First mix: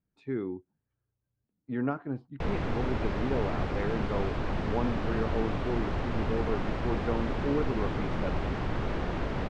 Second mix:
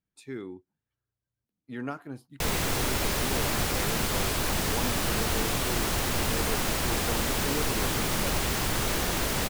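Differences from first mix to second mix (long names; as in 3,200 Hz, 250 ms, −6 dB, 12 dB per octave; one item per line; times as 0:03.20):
speech −6.5 dB
master: remove head-to-tape spacing loss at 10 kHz 43 dB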